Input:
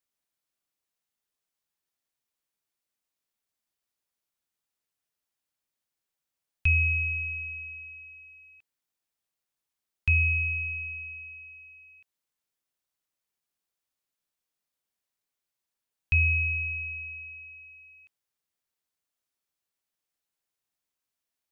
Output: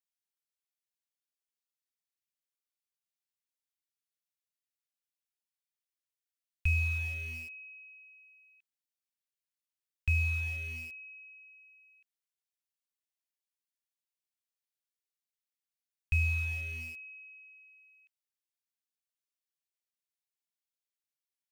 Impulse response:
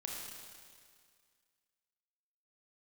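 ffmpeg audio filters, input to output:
-filter_complex "[0:a]acrossover=split=1400[s0][s1];[s0]acrusher=bits=6:mix=0:aa=0.000001[s2];[s2][s1]amix=inputs=2:normalize=0,lowshelf=f=74:g=10.5,volume=0.376"

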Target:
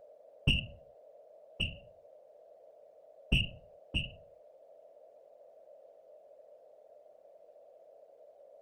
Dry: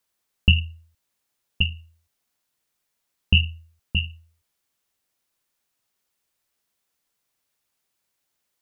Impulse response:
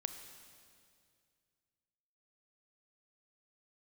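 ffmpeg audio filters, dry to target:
-filter_complex "[0:a]asplit=2[s0][s1];[s1]highpass=f=720:p=1,volume=7.94,asoftclip=type=tanh:threshold=0.668[s2];[s0][s2]amix=inputs=2:normalize=0,lowpass=f=1000:p=1,volume=0.501,aeval=exprs='val(0)+0.00501*sin(2*PI*590*n/s)':c=same,afftfilt=real='hypot(re,im)*cos(2*PI*random(0))':imag='hypot(re,im)*sin(2*PI*random(1))':win_size=512:overlap=0.75,volume=0.75"

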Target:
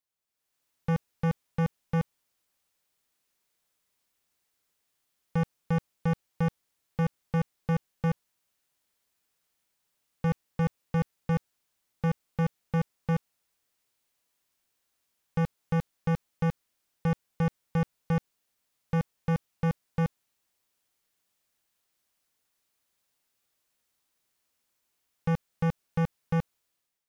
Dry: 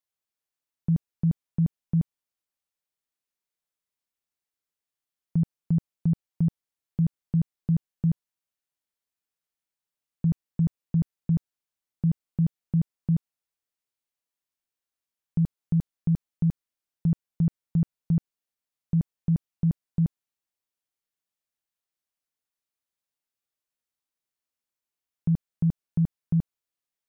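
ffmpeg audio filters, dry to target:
-af "dynaudnorm=f=130:g=7:m=3.98,volume=15,asoftclip=hard,volume=0.0668"

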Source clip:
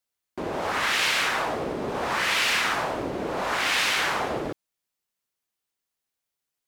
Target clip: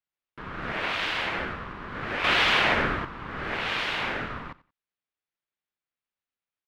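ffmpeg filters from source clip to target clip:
-filter_complex "[0:a]acrossover=split=530 3400:gain=0.2 1 0.0891[s0][s1][s2];[s0][s1][s2]amix=inputs=3:normalize=0,asettb=1/sr,asplit=3[s3][s4][s5];[s3]atrim=end=2.244[s6];[s4]atrim=start=2.24:end=3.05,asetpts=PTS-STARTPTS,afade=t=in:d=0.004:c=qsin,afade=t=out:st=0.806:d=0.004:c=qsin,acontrast=86[s7];[s5]atrim=start=3.046[s8];[s6][s7]acrossfade=d=0.004:c1=hsin:c2=qsin[s9];[s9][s8]acrossfade=d=0.004:c1=qsin:c2=hsin,aeval=exprs='val(0)*sin(2*PI*610*n/s)':c=same,asplit=2[s10][s11];[s11]aecho=0:1:90|180:0.1|0.021[s12];[s10][s12]amix=inputs=2:normalize=0"

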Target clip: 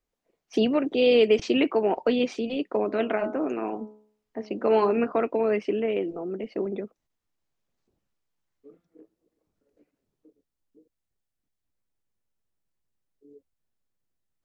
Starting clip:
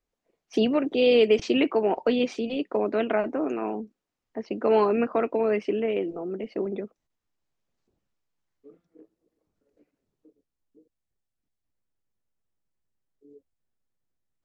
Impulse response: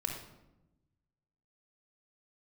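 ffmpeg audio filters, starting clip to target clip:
-filter_complex "[0:a]asettb=1/sr,asplit=3[s0][s1][s2];[s0]atrim=end=2.834[s3];[s1]atrim=start=2.83:end=5.12,asetpts=PTS-STARTPTS,afade=t=in:d=0.004:c=qsin,afade=t=out:st=2.286:d=0.004:c=qsin,bandreject=f=70.86:t=h:w=4,bandreject=f=141.72:t=h:w=4,bandreject=f=212.58:t=h:w=4,bandreject=f=283.44:t=h:w=4,bandreject=f=354.3:t=h:w=4,bandreject=f=425.16:t=h:w=4,bandreject=f=496.02:t=h:w=4,bandreject=f=566.88:t=h:w=4,bandreject=f=637.74:t=h:w=4,bandreject=f=708.6:t=h:w=4,bandreject=f=779.46:t=h:w=4,bandreject=f=850.32:t=h:w=4,bandreject=f=921.18:t=h:w=4,bandreject=f=992.04:t=h:w=4,bandreject=f=1062.9:t=h:w=4,bandreject=f=1133.76:t=h:w=4,bandreject=f=1204.62:t=h:w=4,bandreject=f=1275.48:t=h:w=4,bandreject=f=1346.34:t=h:w=4,bandreject=f=1417.2:t=h:w=4,bandreject=f=1488.06:t=h:w=4[s4];[s2]atrim=start=5.116[s5];[s3][s4]acrossfade=d=0.004:c1=hsin:c2=qsin[s6];[s6][s5]acrossfade=d=0.004:c1=qsin:c2=hsin"

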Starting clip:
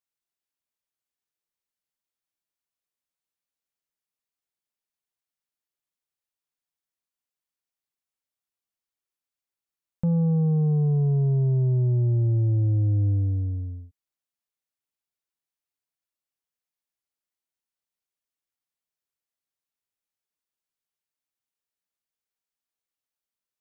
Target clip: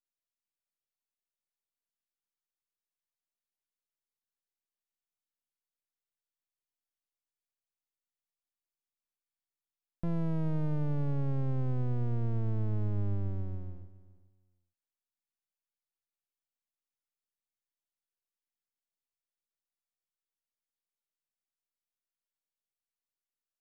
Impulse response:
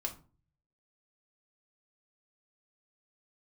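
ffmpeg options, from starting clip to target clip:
-filter_complex "[0:a]aeval=exprs='max(val(0),0)':c=same,asplit=2[s0][s1];[s1]aecho=0:1:416|832:0.119|0.0214[s2];[s0][s2]amix=inputs=2:normalize=0,volume=0.531"

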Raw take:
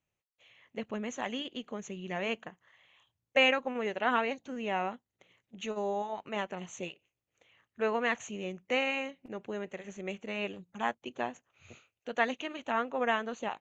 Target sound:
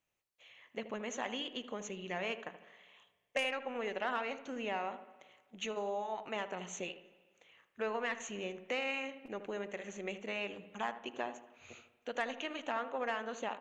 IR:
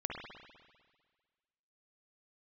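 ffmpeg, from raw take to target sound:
-filter_complex "[0:a]aeval=exprs='0.266*(cos(1*acos(clip(val(0)/0.266,-1,1)))-cos(1*PI/2))+0.015*(cos(2*acos(clip(val(0)/0.266,-1,1)))-cos(2*PI/2))+0.0473*(cos(3*acos(clip(val(0)/0.266,-1,1)))-cos(3*PI/2))+0.0266*(cos(5*acos(clip(val(0)/0.266,-1,1)))-cos(5*PI/2))':c=same,acompressor=threshold=0.0158:ratio=3,equalizer=f=89:t=o:w=2.9:g=-10,asplit=2[s0][s1];[s1]adelay=78,lowpass=f=930:p=1,volume=0.335,asplit=2[s2][s3];[s3]adelay=78,lowpass=f=930:p=1,volume=0.46,asplit=2[s4][s5];[s5]adelay=78,lowpass=f=930:p=1,volume=0.46,asplit=2[s6][s7];[s7]adelay=78,lowpass=f=930:p=1,volume=0.46,asplit=2[s8][s9];[s9]adelay=78,lowpass=f=930:p=1,volume=0.46[s10];[s0][s2][s4][s6][s8][s10]amix=inputs=6:normalize=0,asplit=2[s11][s12];[1:a]atrim=start_sample=2205[s13];[s12][s13]afir=irnorm=-1:irlink=0,volume=0.178[s14];[s11][s14]amix=inputs=2:normalize=0,volume=1.12"

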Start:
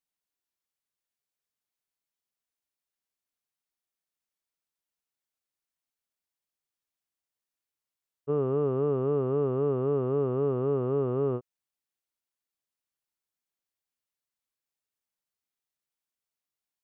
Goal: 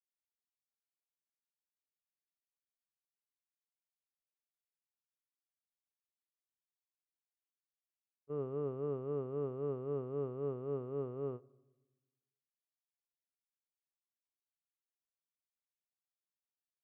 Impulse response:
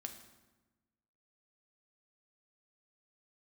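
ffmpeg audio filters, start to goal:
-filter_complex "[0:a]agate=range=0.0224:threshold=0.158:ratio=3:detection=peak,asplit=2[s0][s1];[1:a]atrim=start_sample=2205[s2];[s1][s2]afir=irnorm=-1:irlink=0,volume=0.299[s3];[s0][s3]amix=inputs=2:normalize=0,volume=1.12"

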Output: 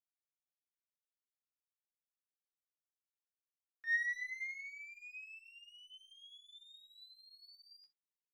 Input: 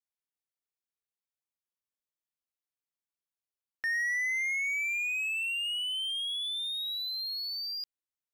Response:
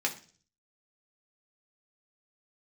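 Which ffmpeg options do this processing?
-filter_complex "[0:a]aeval=exprs='if(lt(val(0),0),0.708*val(0),val(0))':c=same,agate=range=0.0224:threshold=0.0398:ratio=16:detection=peak,equalizer=f=1300:w=0.74:g=7[s0];[1:a]atrim=start_sample=2205,atrim=end_sample=3969[s1];[s0][s1]afir=irnorm=-1:irlink=0,volume=1.33"

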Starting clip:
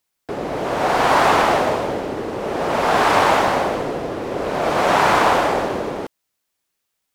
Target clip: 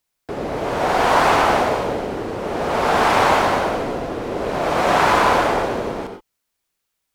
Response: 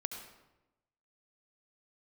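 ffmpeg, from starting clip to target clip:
-filter_complex "[0:a]lowshelf=f=61:g=8.5[s0];[1:a]atrim=start_sample=2205,atrim=end_sample=6174[s1];[s0][s1]afir=irnorm=-1:irlink=0"

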